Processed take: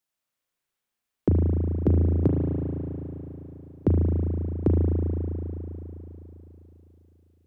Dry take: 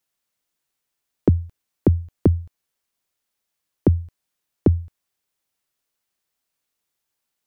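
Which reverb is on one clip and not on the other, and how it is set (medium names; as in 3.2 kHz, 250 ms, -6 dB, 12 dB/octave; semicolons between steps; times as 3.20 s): spring tank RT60 3.8 s, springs 36 ms, chirp 65 ms, DRR -2 dB; trim -6 dB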